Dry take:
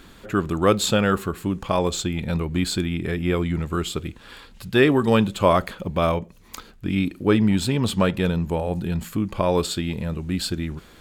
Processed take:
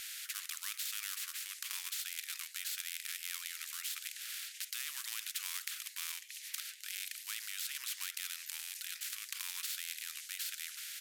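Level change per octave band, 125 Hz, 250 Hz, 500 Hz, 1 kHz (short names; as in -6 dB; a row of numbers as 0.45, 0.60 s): under -40 dB, under -40 dB, under -40 dB, -30.0 dB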